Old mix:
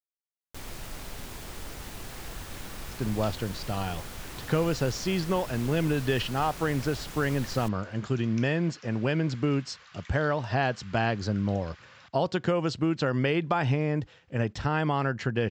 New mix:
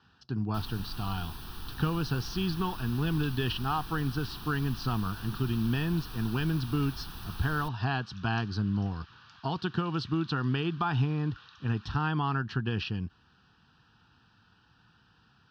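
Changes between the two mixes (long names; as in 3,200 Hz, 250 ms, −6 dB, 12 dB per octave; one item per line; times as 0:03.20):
speech: entry −2.70 s
master: add phaser with its sweep stopped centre 2,100 Hz, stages 6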